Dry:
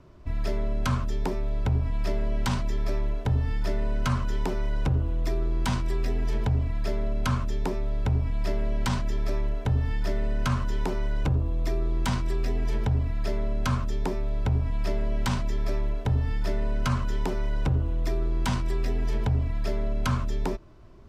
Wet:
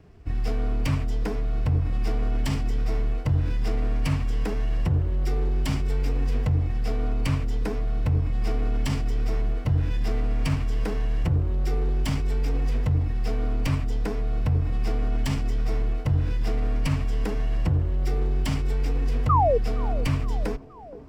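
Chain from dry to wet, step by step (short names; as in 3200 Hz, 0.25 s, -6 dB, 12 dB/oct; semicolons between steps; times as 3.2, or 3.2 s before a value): minimum comb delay 0.39 ms; low shelf 240 Hz +2.5 dB; formant-preserving pitch shift +2 st; painted sound fall, 19.29–19.58, 430–1300 Hz -20 dBFS; on a send: band-limited delay 0.468 s, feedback 61%, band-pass 450 Hz, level -14 dB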